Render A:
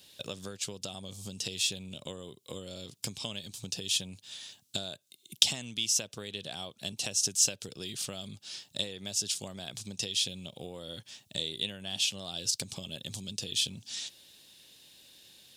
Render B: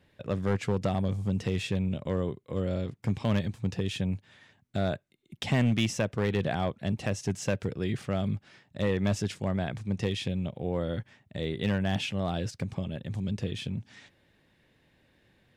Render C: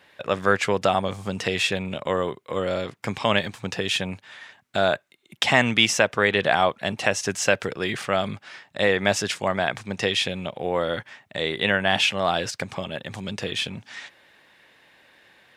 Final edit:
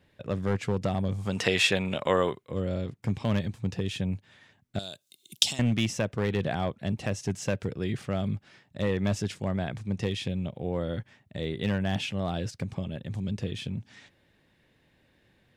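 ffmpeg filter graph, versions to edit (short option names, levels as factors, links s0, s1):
-filter_complex "[1:a]asplit=3[s0][s1][s2];[s0]atrim=end=1.39[s3];[2:a]atrim=start=1.15:end=2.51[s4];[s1]atrim=start=2.27:end=4.792[s5];[0:a]atrim=start=4.788:end=5.592[s6];[s2]atrim=start=5.588[s7];[s3][s4]acrossfade=d=0.24:c1=tri:c2=tri[s8];[s8][s5]acrossfade=d=0.24:c1=tri:c2=tri[s9];[s9][s6]acrossfade=d=0.004:c1=hsin:c2=hsin[s10];[s10][s7]acrossfade=d=0.004:c1=hsin:c2=hsin"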